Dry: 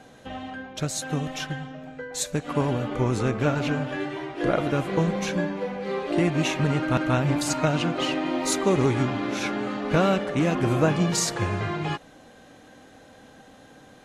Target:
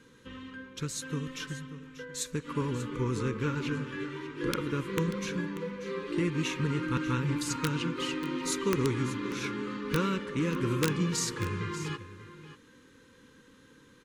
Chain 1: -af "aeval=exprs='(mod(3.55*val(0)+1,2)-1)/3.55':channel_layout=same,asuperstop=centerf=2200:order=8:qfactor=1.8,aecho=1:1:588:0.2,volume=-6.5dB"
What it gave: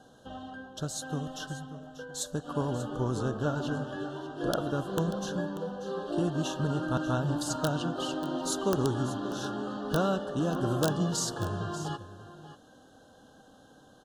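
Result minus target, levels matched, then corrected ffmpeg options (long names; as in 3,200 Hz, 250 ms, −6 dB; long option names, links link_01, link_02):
2,000 Hz band −4.0 dB
-af "aeval=exprs='(mod(3.55*val(0)+1,2)-1)/3.55':channel_layout=same,asuperstop=centerf=690:order=8:qfactor=1.8,aecho=1:1:588:0.2,volume=-6.5dB"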